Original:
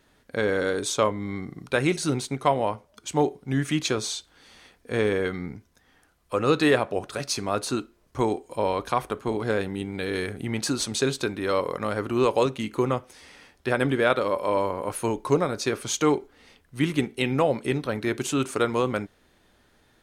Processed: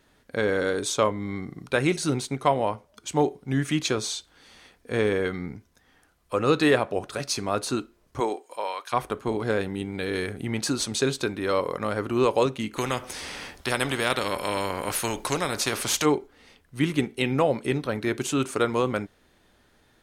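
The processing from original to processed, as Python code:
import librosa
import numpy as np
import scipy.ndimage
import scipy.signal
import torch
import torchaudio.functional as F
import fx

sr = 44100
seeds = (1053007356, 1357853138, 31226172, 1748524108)

y = fx.highpass(x, sr, hz=fx.line((8.19, 320.0), (8.92, 1400.0)), slope=12, at=(8.19, 8.92), fade=0.02)
y = fx.spectral_comp(y, sr, ratio=2.0, at=(12.76, 16.04), fade=0.02)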